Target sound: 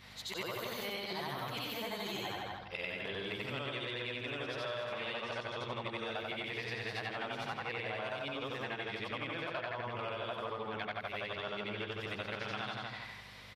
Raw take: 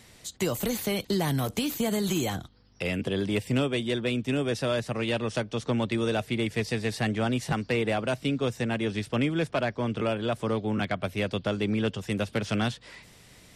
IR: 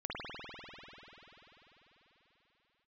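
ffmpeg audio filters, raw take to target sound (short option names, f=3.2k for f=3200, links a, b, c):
-filter_complex "[0:a]afftfilt=real='re':imag='-im':win_size=8192:overlap=0.75,equalizer=f=250:t=o:w=1:g=-9,equalizer=f=1k:t=o:w=1:g=8,equalizer=f=2k:t=o:w=1:g=5,equalizer=f=4k:t=o:w=1:g=8,equalizer=f=8k:t=o:w=1:g=-11,aeval=exprs='val(0)+0.00178*(sin(2*PI*50*n/s)+sin(2*PI*2*50*n/s)/2+sin(2*PI*3*50*n/s)/3+sin(2*PI*4*50*n/s)/4+sin(2*PI*5*50*n/s)/5)':c=same,highpass=110,equalizer=f=160:w=6.8:g=-8,asplit=2[a][b];[b]adelay=161,lowpass=f=2.7k:p=1,volume=-4dB,asplit=2[c][d];[d]adelay=161,lowpass=f=2.7k:p=1,volume=0.23,asplit=2[e][f];[f]adelay=161,lowpass=f=2.7k:p=1,volume=0.23[g];[a][c][e][g]amix=inputs=4:normalize=0,acompressor=threshold=-39dB:ratio=4,volume=1dB"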